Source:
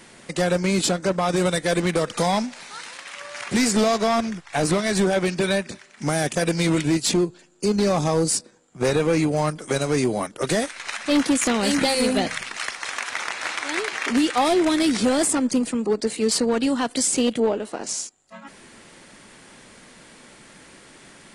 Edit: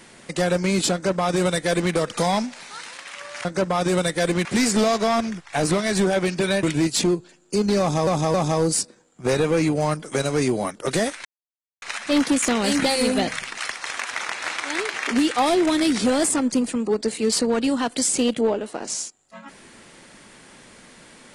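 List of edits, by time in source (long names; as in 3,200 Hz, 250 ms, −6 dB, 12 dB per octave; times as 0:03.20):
0:00.93–0:01.93: duplicate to 0:03.45
0:05.63–0:06.73: remove
0:07.90–0:08.17: repeat, 3 plays
0:10.81: splice in silence 0.57 s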